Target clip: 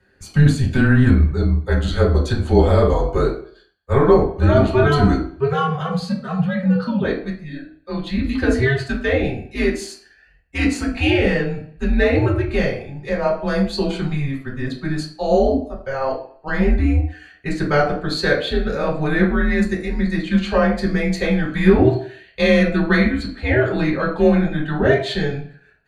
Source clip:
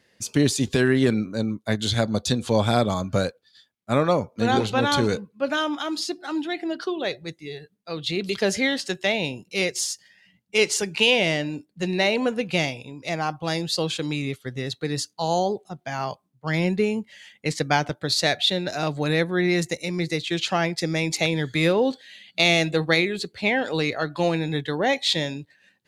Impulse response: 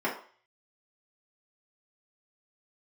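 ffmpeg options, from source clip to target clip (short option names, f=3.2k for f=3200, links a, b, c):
-filter_complex "[1:a]atrim=start_sample=2205,asetrate=37926,aresample=44100[a];[0:a][a]afir=irnorm=-1:irlink=0,afreqshift=-140,volume=-6dB"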